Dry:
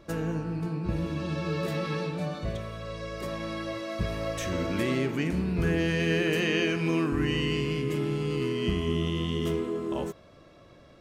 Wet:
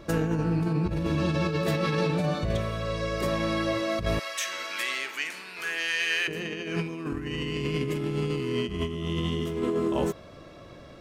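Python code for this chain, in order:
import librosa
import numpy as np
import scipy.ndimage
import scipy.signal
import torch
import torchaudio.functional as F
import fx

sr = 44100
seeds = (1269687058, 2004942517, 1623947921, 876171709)

y = fx.highpass(x, sr, hz=1500.0, slope=12, at=(4.19, 6.28))
y = fx.over_compress(y, sr, threshold_db=-31.0, ratio=-0.5)
y = F.gain(torch.from_numpy(y), 4.5).numpy()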